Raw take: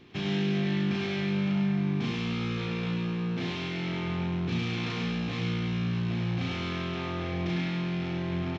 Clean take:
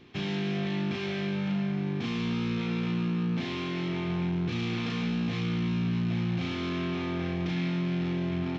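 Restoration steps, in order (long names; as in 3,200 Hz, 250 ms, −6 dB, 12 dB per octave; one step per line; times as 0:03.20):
echo removal 101 ms −4.5 dB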